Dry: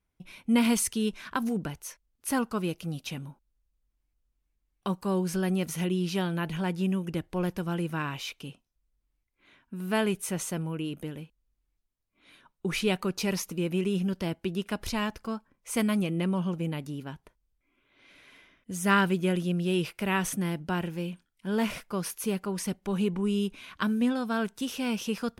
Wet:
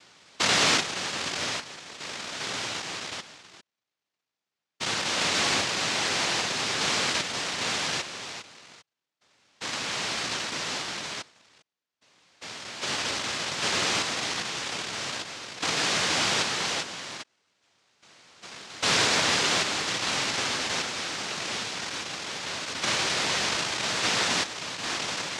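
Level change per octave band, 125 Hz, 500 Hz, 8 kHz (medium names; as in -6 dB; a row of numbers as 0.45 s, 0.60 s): -9.5 dB, -3.0 dB, +8.5 dB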